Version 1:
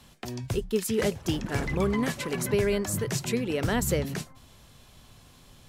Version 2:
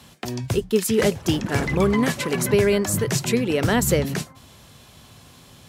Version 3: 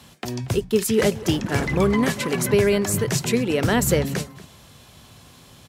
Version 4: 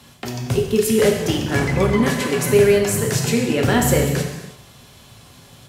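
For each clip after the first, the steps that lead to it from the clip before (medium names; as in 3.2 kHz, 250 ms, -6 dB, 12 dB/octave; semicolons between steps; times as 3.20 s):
high-pass 73 Hz; trim +7 dB
echo from a far wall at 40 m, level -17 dB
reverberation, pre-delay 3 ms, DRR 0.5 dB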